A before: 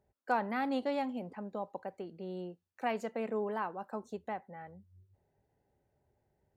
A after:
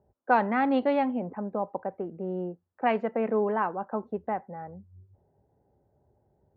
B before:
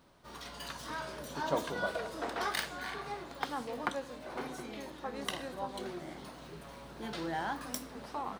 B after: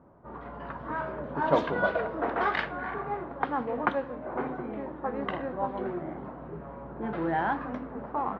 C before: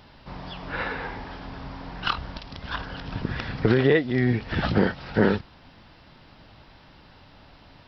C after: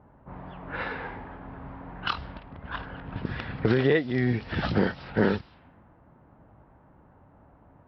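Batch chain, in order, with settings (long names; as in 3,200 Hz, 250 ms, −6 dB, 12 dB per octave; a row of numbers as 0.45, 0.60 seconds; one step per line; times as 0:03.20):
low-pass that shuts in the quiet parts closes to 1,100 Hz, open at −20 dBFS
high-pass filter 44 Hz
low-pass that shuts in the quiet parts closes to 1,500 Hz, open at −21 dBFS
normalise the peak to −9 dBFS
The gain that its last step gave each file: +9.0, +8.5, −3.0 decibels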